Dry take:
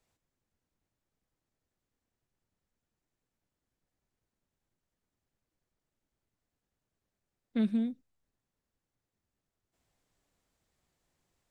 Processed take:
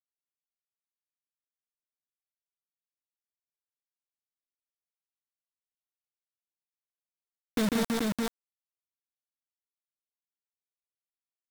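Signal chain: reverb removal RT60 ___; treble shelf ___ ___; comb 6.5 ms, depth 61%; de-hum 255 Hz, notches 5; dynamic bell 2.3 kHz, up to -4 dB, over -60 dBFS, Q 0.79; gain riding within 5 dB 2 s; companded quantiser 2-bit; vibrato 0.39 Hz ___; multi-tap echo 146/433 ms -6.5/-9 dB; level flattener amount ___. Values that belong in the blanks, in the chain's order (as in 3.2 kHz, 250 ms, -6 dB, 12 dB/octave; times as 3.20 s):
0.99 s, 3.5 kHz, +10.5 dB, 63 cents, 70%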